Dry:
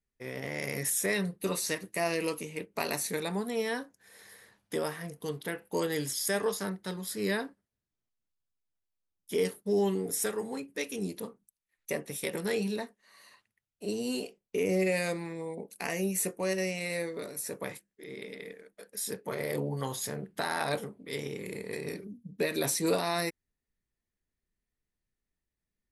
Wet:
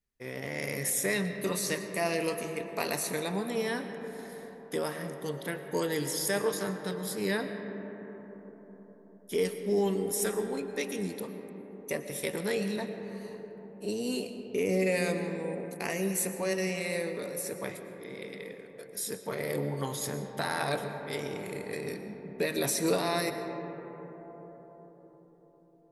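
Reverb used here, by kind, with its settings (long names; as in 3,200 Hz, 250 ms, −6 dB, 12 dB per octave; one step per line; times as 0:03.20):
comb and all-pass reverb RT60 5 s, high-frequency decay 0.25×, pre-delay 75 ms, DRR 7.5 dB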